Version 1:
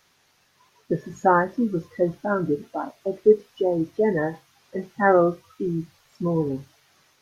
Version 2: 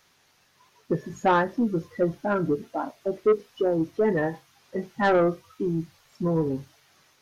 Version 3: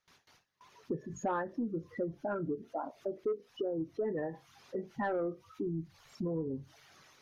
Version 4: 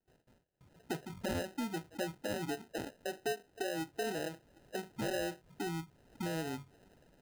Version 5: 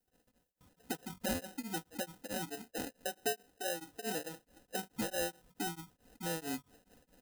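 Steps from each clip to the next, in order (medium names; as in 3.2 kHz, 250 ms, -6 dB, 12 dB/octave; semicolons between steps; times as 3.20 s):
saturation -14 dBFS, distortion -13 dB
resonances exaggerated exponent 1.5; gate with hold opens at -52 dBFS; compression 2.5:1, threshold -38 dBFS, peak gain reduction 14.5 dB
sample-and-hold 39×; trim -2.5 dB
treble shelf 6.1 kHz +12 dB; comb 4 ms, depth 53%; tremolo of two beating tones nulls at 4.6 Hz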